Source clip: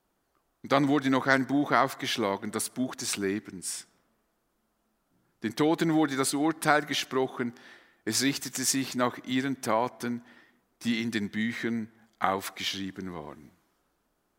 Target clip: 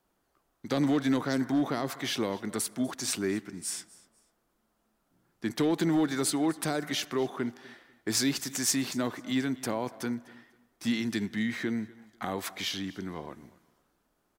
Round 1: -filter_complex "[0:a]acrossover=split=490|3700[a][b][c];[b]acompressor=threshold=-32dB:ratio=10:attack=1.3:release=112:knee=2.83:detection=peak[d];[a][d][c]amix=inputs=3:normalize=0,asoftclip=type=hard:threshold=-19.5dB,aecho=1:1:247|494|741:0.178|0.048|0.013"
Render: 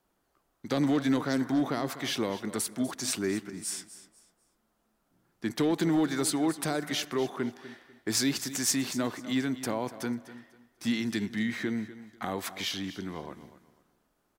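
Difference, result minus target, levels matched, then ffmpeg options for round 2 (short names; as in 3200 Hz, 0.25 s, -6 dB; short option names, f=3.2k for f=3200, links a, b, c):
echo-to-direct +6.5 dB
-filter_complex "[0:a]acrossover=split=490|3700[a][b][c];[b]acompressor=threshold=-32dB:ratio=10:attack=1.3:release=112:knee=2.83:detection=peak[d];[a][d][c]amix=inputs=3:normalize=0,asoftclip=type=hard:threshold=-19.5dB,aecho=1:1:247|494:0.0841|0.0227"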